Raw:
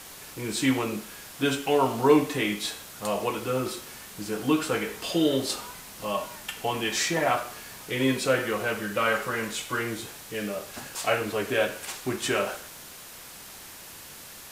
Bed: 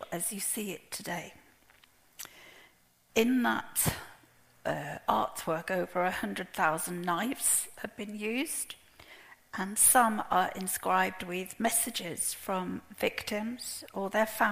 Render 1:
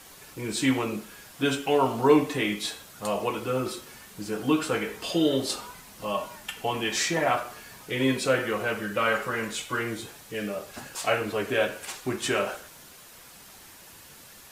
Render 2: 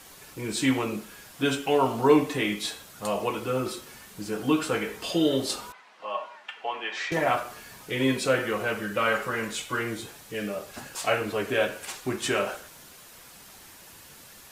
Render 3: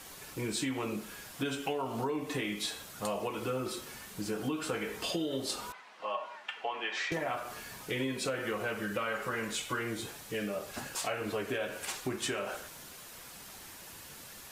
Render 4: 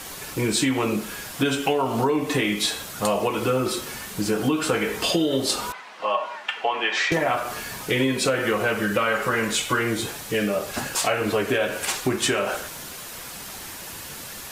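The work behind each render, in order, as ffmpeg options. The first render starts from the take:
-af "afftdn=nr=6:nf=-45"
-filter_complex "[0:a]asettb=1/sr,asplit=3[s0][s1][s2];[s0]atrim=end=5.724[s3];[s1]atrim=start=5.72:end=7.12,asetpts=PTS-STARTPTS,afade=t=in:d=0.004:c=qsin,afade=t=out:st=1.396:d=0.004:c=qsin,highpass=650,lowpass=2600[s4];[s2]atrim=start=7.116[s5];[s3][s4]acrossfade=d=0.004:c1=hsin:c2=qsin[s6];[s6][s5]acrossfade=d=0.004:c1=qsin:c2=hsin"
-af "alimiter=limit=0.158:level=0:latency=1:release=160,acompressor=threshold=0.0251:ratio=4"
-af "volume=3.98"

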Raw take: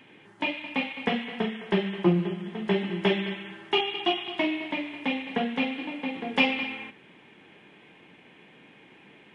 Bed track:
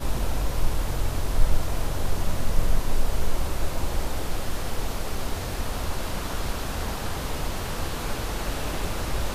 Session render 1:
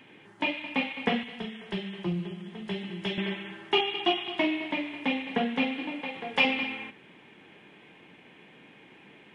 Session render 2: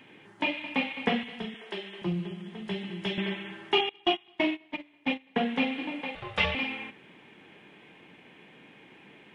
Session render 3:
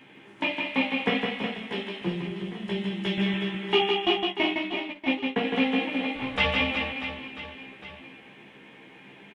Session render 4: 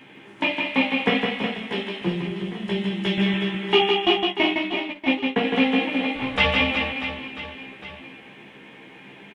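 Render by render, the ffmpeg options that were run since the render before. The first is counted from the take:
-filter_complex "[0:a]asettb=1/sr,asplit=3[s0][s1][s2];[s0]atrim=end=1.234[s3];[s1]atrim=start=1.23:end=3.18,asetpts=PTS-STARTPTS,afade=t=in:d=0.004:c=qsin,afade=t=out:st=1.946:d=0.004:c=qsin,acrossover=split=140|3000[s4][s5][s6];[s5]acompressor=threshold=0.002:ratio=1.5:attack=3.2:release=140:knee=2.83:detection=peak[s7];[s4][s7][s6]amix=inputs=3:normalize=0[s8];[s2]atrim=start=3.176[s9];[s3][s8]acrossfade=d=0.004:c1=hsin:c2=qsin[s10];[s10][s9]acrossfade=d=0.004:c1=qsin:c2=hsin,asettb=1/sr,asplit=3[s11][s12][s13];[s11]atrim=end=6.014[s14];[s12]atrim=start=6.01:end=6.45,asetpts=PTS-STARTPTS,afade=t=in:d=0.004:c=qsin,afade=t=out:st=0.436:d=0.004:c=qsin,equalizer=f=260:w=1.5:g=-10.5[s15];[s13]atrim=start=6.446[s16];[s14][s15]acrossfade=d=0.004:c1=hsin:c2=qsin[s17];[s17][s16]acrossfade=d=0.004:c1=qsin:c2=hsin"
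-filter_complex "[0:a]asettb=1/sr,asplit=3[s0][s1][s2];[s0]atrim=end=1.544[s3];[s1]atrim=start=1.54:end=2.02,asetpts=PTS-STARTPTS,afade=t=in:d=0.004:c=qsin,afade=t=out:st=0.476:d=0.004:c=qsin,highpass=f=280:w=0.5412,highpass=f=280:w=1.3066[s4];[s2]atrim=start=2.016[s5];[s3][s4]acrossfade=d=0.004:c1=hsin:c2=qsin[s6];[s6][s5]acrossfade=d=0.004:c1=qsin:c2=hsin,asettb=1/sr,asplit=3[s7][s8][s9];[s7]atrim=end=3.894[s10];[s8]atrim=start=3.89:end=5.36,asetpts=PTS-STARTPTS,afade=t=in:d=0.004:c=qsin,afade=t=out:st=1.466:d=0.004:c=qsin,agate=range=0.0794:threshold=0.0355:ratio=16:release=100:detection=peak[s11];[s9]atrim=start=5.356[s12];[s10][s11]acrossfade=d=0.004:c1=hsin:c2=qsin[s13];[s13][s12]acrossfade=d=0.004:c1=qsin:c2=hsin,asettb=1/sr,asplit=3[s14][s15][s16];[s14]atrim=end=6.154[s17];[s15]atrim=start=6.15:end=6.55,asetpts=PTS-STARTPTS,afade=t=in:d=0.004:c=qsin,afade=t=out:st=0.396:d=0.004:c=qsin,aeval=exprs='val(0)*sin(2*PI*340*n/s)':c=same[s18];[s16]atrim=start=6.546[s19];[s17][s18]acrossfade=d=0.004:c1=hsin:c2=qsin[s20];[s20][s19]acrossfade=d=0.004:c1=qsin:c2=hsin"
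-filter_complex "[0:a]asplit=2[s0][s1];[s1]adelay=15,volume=0.708[s2];[s0][s2]amix=inputs=2:normalize=0,aecho=1:1:160|368|638.4|989.9|1447:0.631|0.398|0.251|0.158|0.1"
-af "volume=1.68"

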